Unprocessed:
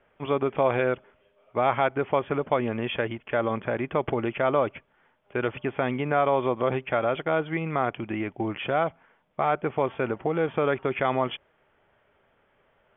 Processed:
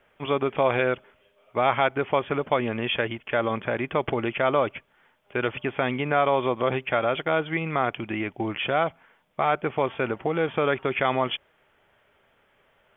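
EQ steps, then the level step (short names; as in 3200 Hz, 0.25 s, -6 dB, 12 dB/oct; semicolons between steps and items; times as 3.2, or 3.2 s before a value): high shelf 2500 Hz +10.5 dB; 0.0 dB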